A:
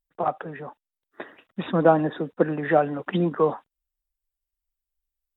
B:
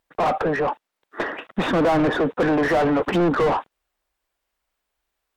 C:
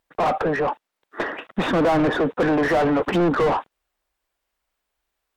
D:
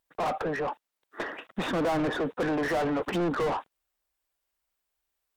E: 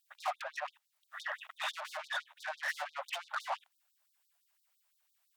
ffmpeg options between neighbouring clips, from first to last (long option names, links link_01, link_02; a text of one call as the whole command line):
ffmpeg -i in.wav -filter_complex "[0:a]asplit=2[link_01][link_02];[link_02]highpass=frequency=720:poles=1,volume=39dB,asoftclip=type=tanh:threshold=-4.5dB[link_03];[link_01][link_03]amix=inputs=2:normalize=0,lowpass=frequency=1000:poles=1,volume=-6dB,volume=-6dB" out.wav
ffmpeg -i in.wav -af anull out.wav
ffmpeg -i in.wav -af "highshelf=frequency=5100:gain=9,volume=-8.5dB" out.wav
ffmpeg -i in.wav -af "acompressor=threshold=-37dB:ratio=4,afftfilt=real='re*gte(b*sr/1024,530*pow(3600/530,0.5+0.5*sin(2*PI*5.9*pts/sr)))':imag='im*gte(b*sr/1024,530*pow(3600/530,0.5+0.5*sin(2*PI*5.9*pts/sr)))':win_size=1024:overlap=0.75,volume=6dB" out.wav